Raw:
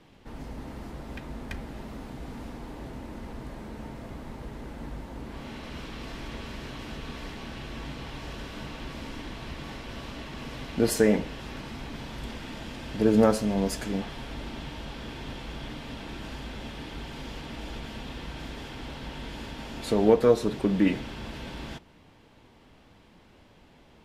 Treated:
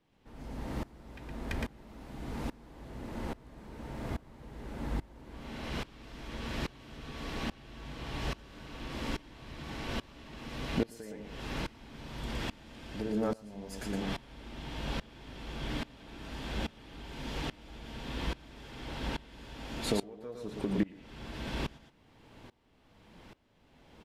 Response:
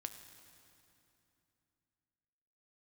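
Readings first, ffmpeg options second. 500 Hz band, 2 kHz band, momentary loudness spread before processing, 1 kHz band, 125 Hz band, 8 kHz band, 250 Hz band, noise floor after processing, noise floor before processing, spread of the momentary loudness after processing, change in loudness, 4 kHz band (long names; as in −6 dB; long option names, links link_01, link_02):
−12.5 dB, −4.0 dB, 18 LU, −5.5 dB, −4.5 dB, −8.5 dB, −8.5 dB, −63 dBFS, −56 dBFS, 15 LU, −8.0 dB, −3.0 dB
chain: -af "acompressor=threshold=-30dB:ratio=8,aecho=1:1:115:0.531,aeval=exprs='val(0)*pow(10,-23*if(lt(mod(-1.2*n/s,1),2*abs(-1.2)/1000),1-mod(-1.2*n/s,1)/(2*abs(-1.2)/1000),(mod(-1.2*n/s,1)-2*abs(-1.2)/1000)/(1-2*abs(-1.2)/1000))/20)':channel_layout=same,volume=4.5dB"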